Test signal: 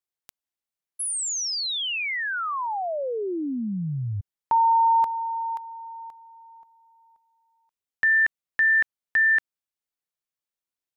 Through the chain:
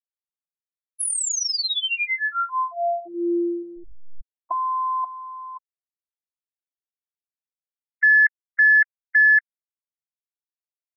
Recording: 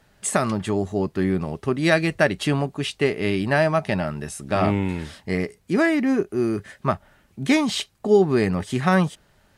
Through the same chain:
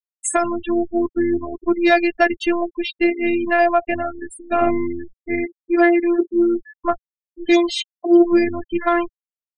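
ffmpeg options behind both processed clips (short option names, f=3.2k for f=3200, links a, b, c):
-af "afftfilt=real='hypot(re,im)*cos(PI*b)':imag='0':win_size=512:overlap=0.75,afftfilt=real='re*gte(hypot(re,im),0.0501)':imag='im*gte(hypot(re,im),0.0501)':win_size=1024:overlap=0.75,acontrast=31,volume=2dB"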